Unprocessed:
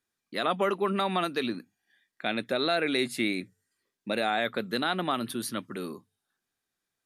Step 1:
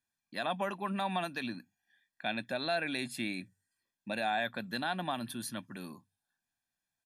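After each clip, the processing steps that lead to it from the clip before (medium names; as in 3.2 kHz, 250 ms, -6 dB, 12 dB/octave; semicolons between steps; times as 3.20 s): comb 1.2 ms, depth 70%; trim -7 dB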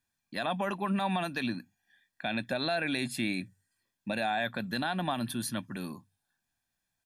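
bass shelf 120 Hz +8 dB; peak limiter -25 dBFS, peak gain reduction 5.5 dB; trim +4.5 dB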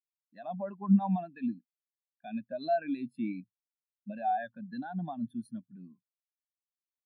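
spectral contrast expander 2.5:1; trim +5.5 dB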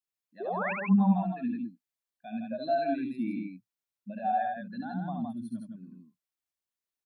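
painted sound rise, 0.40–0.73 s, 350–2800 Hz -35 dBFS; loudspeakers at several distances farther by 24 m -4 dB, 56 m -4 dB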